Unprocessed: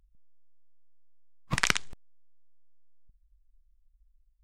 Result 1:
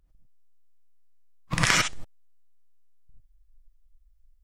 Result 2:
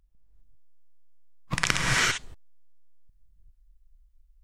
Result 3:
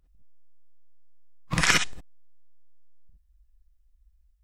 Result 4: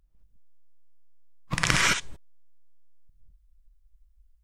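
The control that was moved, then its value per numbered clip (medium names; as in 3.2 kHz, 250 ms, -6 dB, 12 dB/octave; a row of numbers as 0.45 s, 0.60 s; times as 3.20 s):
gated-style reverb, gate: 120 ms, 420 ms, 80 ms, 240 ms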